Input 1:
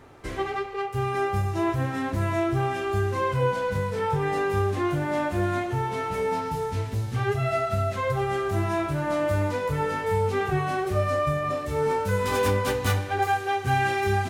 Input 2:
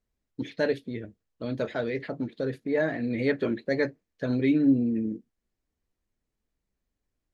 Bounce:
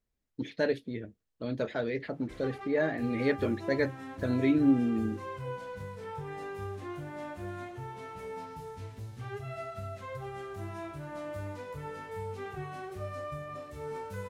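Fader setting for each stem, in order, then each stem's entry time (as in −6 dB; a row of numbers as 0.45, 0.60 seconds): −14.5, −2.5 decibels; 2.05, 0.00 seconds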